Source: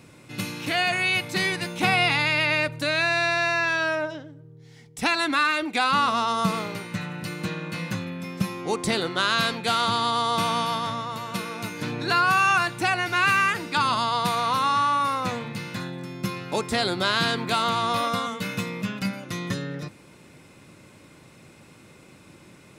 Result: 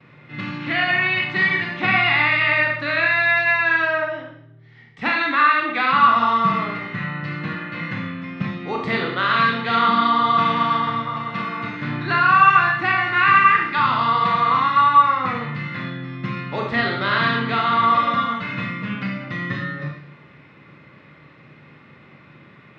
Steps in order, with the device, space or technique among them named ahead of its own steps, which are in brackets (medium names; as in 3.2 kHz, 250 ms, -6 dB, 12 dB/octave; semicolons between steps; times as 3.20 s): gate with hold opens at -42 dBFS; 9.71–10.21 s: resonant low shelf 160 Hz -7.5 dB, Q 3; guitar cabinet (cabinet simulation 76–3600 Hz, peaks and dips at 140 Hz +8 dB, 1.2 kHz +7 dB, 1.9 kHz +10 dB); Schroeder reverb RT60 0.64 s, combs from 27 ms, DRR -0.5 dB; trim -2.5 dB